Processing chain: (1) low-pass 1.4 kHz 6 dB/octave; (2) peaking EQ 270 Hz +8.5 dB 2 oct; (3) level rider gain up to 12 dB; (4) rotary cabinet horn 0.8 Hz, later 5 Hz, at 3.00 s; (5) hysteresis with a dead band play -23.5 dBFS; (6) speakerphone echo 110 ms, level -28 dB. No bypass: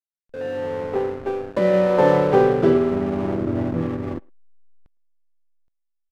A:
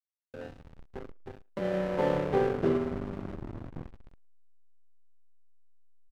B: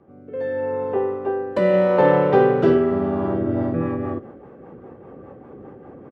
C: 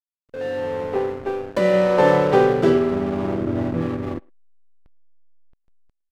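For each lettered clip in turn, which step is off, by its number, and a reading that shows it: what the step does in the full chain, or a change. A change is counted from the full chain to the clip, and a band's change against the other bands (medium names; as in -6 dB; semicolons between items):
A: 3, momentary loudness spread change +7 LU; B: 5, distortion -11 dB; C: 1, 2 kHz band +3.0 dB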